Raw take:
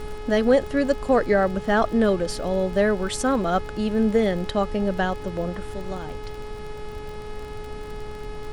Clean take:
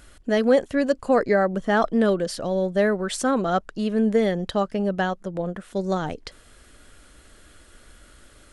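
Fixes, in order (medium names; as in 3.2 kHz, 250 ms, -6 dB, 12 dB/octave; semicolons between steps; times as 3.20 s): de-click; de-hum 423 Hz, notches 13; noise print and reduce 17 dB; trim 0 dB, from 5.74 s +9 dB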